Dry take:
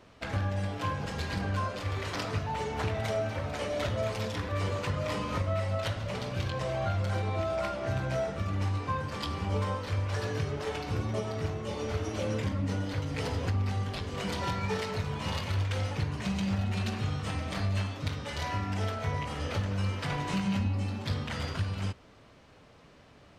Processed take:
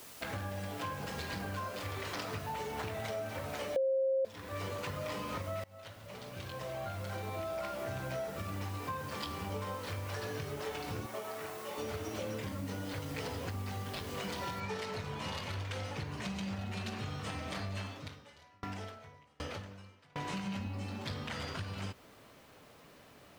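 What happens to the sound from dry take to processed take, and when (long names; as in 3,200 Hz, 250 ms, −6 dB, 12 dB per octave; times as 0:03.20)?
0:03.76–0:04.25: beep over 533 Hz −9 dBFS
0:05.64–0:07.84: fade in, from −23 dB
0:11.06–0:11.78: resonant band-pass 1,300 Hz, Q 0.63
0:14.60: noise floor change −52 dB −69 dB
0:17.86–0:20.16: tremolo with a ramp in dB decaying 1.3 Hz, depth 33 dB
whole clip: low-shelf EQ 120 Hz −10 dB; downward compressor 3 to 1, threshold −37 dBFS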